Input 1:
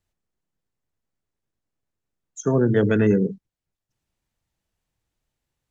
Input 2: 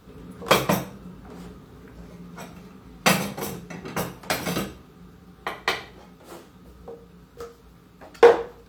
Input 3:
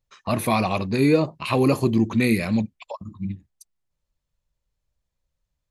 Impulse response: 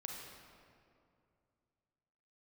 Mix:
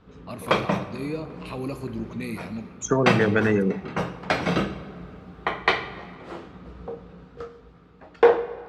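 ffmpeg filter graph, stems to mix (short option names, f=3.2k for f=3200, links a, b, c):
-filter_complex "[0:a]equalizer=f=1.6k:w=0.45:g=10.5,acompressor=threshold=-19dB:ratio=6,adelay=450,volume=1.5dB[a];[1:a]lowpass=3.1k,dynaudnorm=f=230:g=9:m=9dB,volume=-4.5dB,asplit=2[b][c];[c]volume=-7dB[d];[2:a]volume=-15.5dB,asplit=2[e][f];[f]volume=-5dB[g];[3:a]atrim=start_sample=2205[h];[d][g]amix=inputs=2:normalize=0[i];[i][h]afir=irnorm=-1:irlink=0[j];[a][b][e][j]amix=inputs=4:normalize=0"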